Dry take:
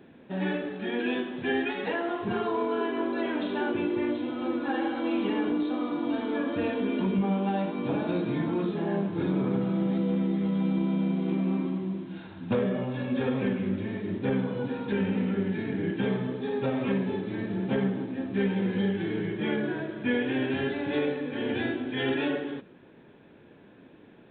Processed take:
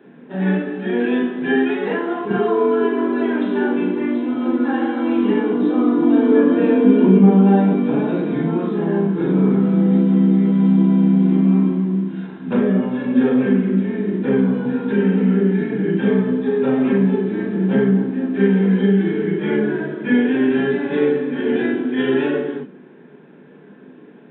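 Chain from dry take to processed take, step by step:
0:05.57–0:07.76: parametric band 360 Hz +5 dB 2.7 octaves
convolution reverb RT60 0.15 s, pre-delay 33 ms, DRR 0.5 dB
level −4.5 dB

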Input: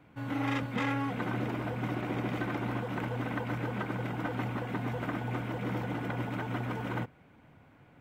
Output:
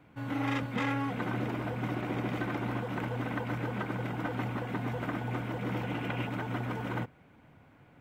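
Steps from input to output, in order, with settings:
0:05.71–0:06.26: parametric band 2,700 Hz +4 dB → +12 dB 0.52 octaves

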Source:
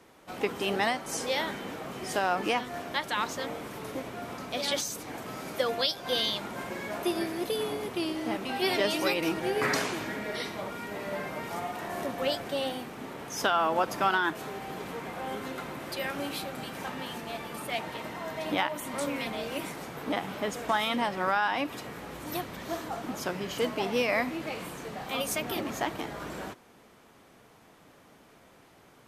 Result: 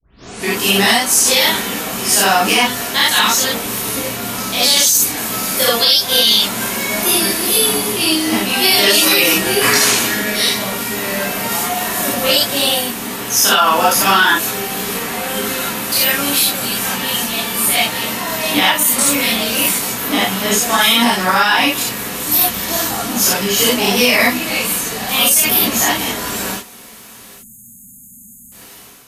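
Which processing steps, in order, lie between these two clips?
turntable start at the beginning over 0.49 s
low-shelf EQ 250 Hz +7 dB
time-frequency box erased 0:27.34–0:28.52, 270–6,400 Hz
first-order pre-emphasis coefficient 0.9
convolution reverb, pre-delay 15 ms, DRR −8 dB
automatic gain control gain up to 8 dB
boost into a limiter +13.5 dB
level −1 dB

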